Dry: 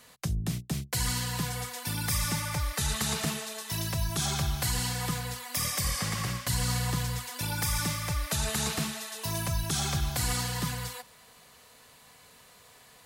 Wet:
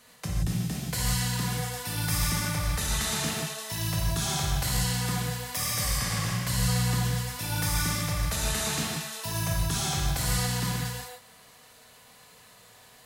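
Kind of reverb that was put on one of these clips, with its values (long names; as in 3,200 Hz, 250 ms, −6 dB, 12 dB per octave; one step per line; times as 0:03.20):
reverb whose tail is shaped and stops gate 200 ms flat, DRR −2.5 dB
level −2.5 dB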